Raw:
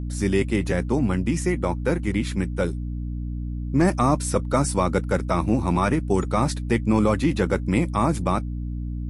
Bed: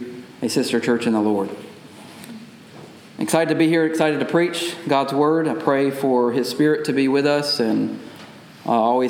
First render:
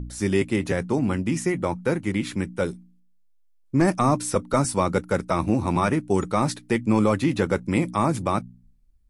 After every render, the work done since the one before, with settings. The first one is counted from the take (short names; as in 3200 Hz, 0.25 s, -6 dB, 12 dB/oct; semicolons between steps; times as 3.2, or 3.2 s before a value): de-hum 60 Hz, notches 5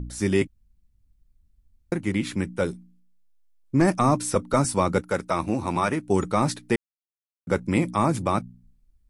0.47–1.92 room tone; 5.01–6.08 low shelf 300 Hz -7 dB; 6.76–7.47 mute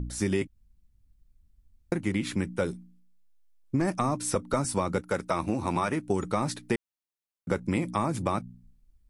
compressor, threshold -23 dBFS, peak gain reduction 8.5 dB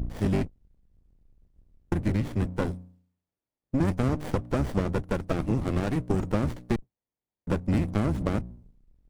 octaver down 1 oct, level +1 dB; running maximum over 33 samples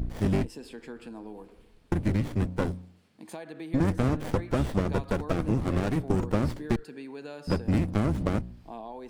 add bed -23.5 dB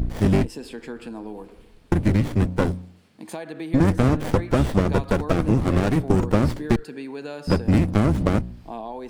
gain +7 dB